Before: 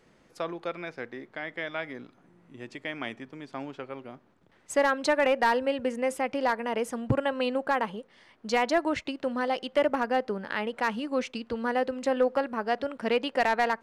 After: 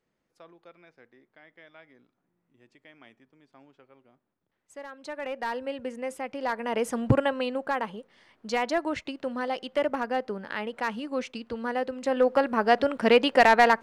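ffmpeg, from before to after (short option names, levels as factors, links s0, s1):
-af "volume=5.01,afade=t=in:st=4.92:d=0.81:silence=0.237137,afade=t=in:st=6.39:d=0.69:silence=0.298538,afade=t=out:st=7.08:d=0.38:silence=0.446684,afade=t=in:st=12.01:d=0.65:silence=0.354813"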